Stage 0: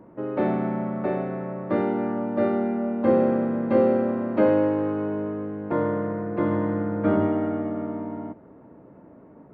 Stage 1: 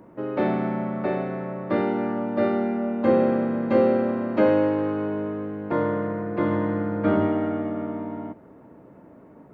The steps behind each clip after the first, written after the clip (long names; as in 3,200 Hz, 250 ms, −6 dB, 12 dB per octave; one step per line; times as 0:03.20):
high-shelf EQ 2,700 Hz +10.5 dB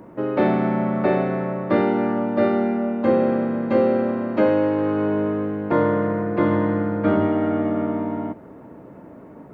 speech leveller within 3 dB 0.5 s
level +3.5 dB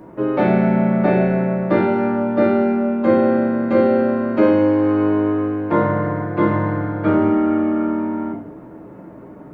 convolution reverb RT60 0.50 s, pre-delay 5 ms, DRR 0.5 dB